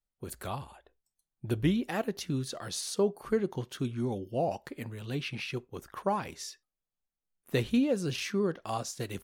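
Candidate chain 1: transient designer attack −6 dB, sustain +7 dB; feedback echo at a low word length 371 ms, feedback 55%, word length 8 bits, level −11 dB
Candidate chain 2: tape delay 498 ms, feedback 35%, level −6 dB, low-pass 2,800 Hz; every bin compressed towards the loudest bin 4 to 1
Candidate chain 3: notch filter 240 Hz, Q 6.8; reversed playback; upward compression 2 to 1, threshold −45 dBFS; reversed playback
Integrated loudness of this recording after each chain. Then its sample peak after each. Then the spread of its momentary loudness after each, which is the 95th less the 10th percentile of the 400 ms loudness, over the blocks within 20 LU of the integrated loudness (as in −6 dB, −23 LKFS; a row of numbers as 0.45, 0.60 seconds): −33.0, −37.0, −33.5 LKFS; −16.5, −16.0, −15.5 dBFS; 15, 8, 12 LU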